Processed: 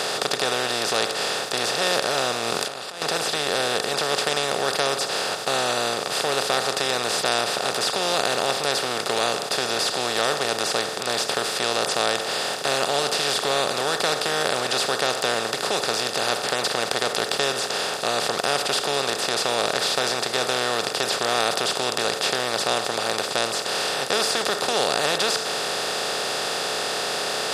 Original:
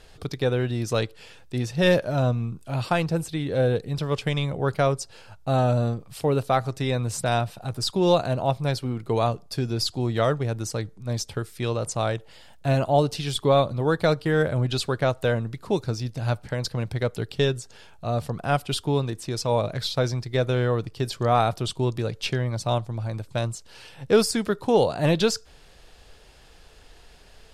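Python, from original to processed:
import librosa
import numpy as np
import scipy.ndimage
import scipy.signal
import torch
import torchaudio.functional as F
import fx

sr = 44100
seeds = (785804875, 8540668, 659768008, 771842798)

y = fx.bin_compress(x, sr, power=0.2)
y = fx.highpass(y, sr, hz=1200.0, slope=6)
y = fx.over_compress(y, sr, threshold_db=-24.0, ratio=-0.5, at=(2.36, 3.02))
y = F.gain(torch.from_numpy(y), -4.0).numpy()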